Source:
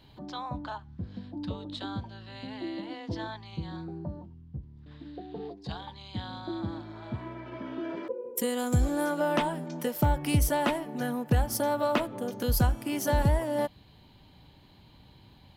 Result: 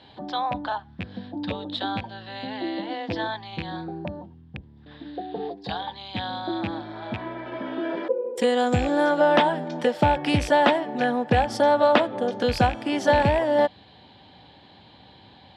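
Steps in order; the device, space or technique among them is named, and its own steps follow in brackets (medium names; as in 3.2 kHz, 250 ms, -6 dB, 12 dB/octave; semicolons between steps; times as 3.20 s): car door speaker with a rattle (rattle on loud lows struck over -31 dBFS, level -28 dBFS; cabinet simulation 110–6700 Hz, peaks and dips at 140 Hz -7 dB, 520 Hz +5 dB, 770 Hz +8 dB, 1.7 kHz +6 dB, 3.5 kHz +6 dB, 6.3 kHz -8 dB); trim +5.5 dB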